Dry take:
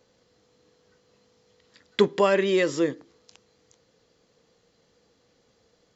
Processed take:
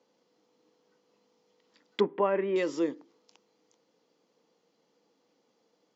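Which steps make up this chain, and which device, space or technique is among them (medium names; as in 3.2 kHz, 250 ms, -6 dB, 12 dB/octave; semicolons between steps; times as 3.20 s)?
television speaker (cabinet simulation 180–6600 Hz, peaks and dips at 300 Hz +5 dB, 900 Hz +6 dB, 1.7 kHz -5 dB, 4 kHz -4 dB); 2.00–2.56 s: low-pass 2.2 kHz 24 dB/octave; trim -7 dB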